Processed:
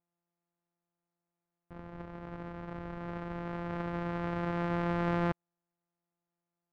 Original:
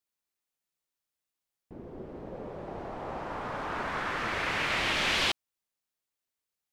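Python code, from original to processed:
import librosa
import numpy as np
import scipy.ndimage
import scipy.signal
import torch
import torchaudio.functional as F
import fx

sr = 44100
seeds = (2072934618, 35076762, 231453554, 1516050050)

y = np.r_[np.sort(x[:len(x) // 256 * 256].reshape(-1, 256), axis=1).ravel(), x[len(x) // 256 * 256:]]
y = scipy.signal.sosfilt(scipy.signal.cheby1(2, 1.0, 1500.0, 'lowpass', fs=sr, output='sos'), y)
y = F.gain(torch.from_numpy(y), -1.0).numpy()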